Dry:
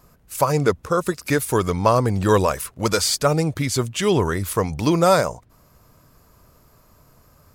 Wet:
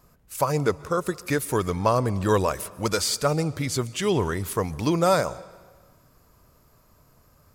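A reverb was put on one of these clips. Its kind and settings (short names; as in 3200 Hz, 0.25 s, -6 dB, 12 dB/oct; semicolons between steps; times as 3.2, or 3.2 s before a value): digital reverb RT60 1.5 s, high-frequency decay 0.9×, pre-delay 95 ms, DRR 19.5 dB; gain -4.5 dB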